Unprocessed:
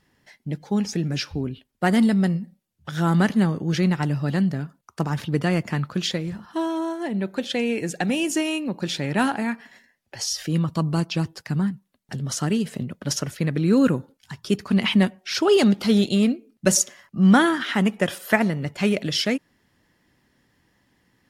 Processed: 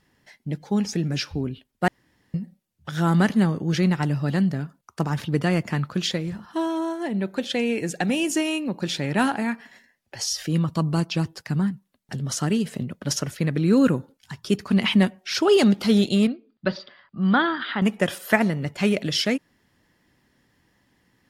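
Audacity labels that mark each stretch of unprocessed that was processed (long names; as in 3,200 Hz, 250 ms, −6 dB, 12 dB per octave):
1.880000	2.340000	fill with room tone
16.270000	17.820000	Chebyshev low-pass with heavy ripple 4,900 Hz, ripple 6 dB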